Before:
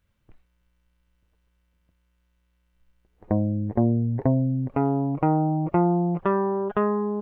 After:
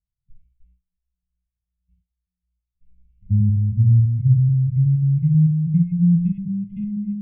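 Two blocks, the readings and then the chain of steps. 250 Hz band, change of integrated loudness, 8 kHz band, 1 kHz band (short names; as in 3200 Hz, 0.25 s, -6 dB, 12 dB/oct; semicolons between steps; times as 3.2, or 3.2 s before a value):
+2.5 dB, +5.5 dB, n/a, under -40 dB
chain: reverse delay 0.162 s, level -4 dB; gate with hold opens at -54 dBFS; tone controls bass +15 dB, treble -13 dB; flange 1.6 Hz, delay 4.8 ms, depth 4.4 ms, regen -68%; high shelf 2400 Hz -8.5 dB; harmonic-percussive split percussive -17 dB; brick-wall FIR band-stop 210–2000 Hz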